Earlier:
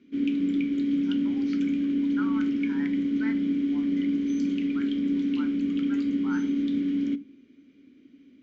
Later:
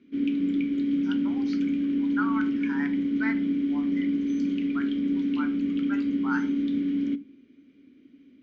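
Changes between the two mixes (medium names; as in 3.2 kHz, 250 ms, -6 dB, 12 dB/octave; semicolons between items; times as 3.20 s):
speech +8.0 dB; master: add distance through air 80 m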